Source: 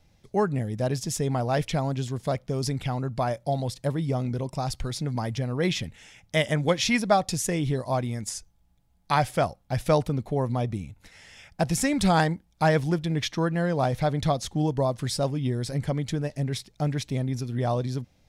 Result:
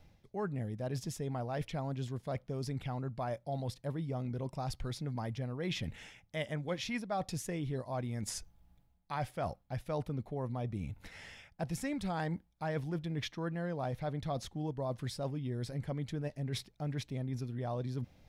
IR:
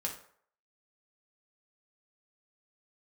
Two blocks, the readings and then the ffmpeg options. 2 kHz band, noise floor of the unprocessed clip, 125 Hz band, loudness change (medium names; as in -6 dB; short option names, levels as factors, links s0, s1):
-13.0 dB, -64 dBFS, -10.5 dB, -11.5 dB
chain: -af "equalizer=f=7600:w=0.65:g=-7.5,areverse,acompressor=threshold=0.0126:ratio=4,areverse,volume=1.19"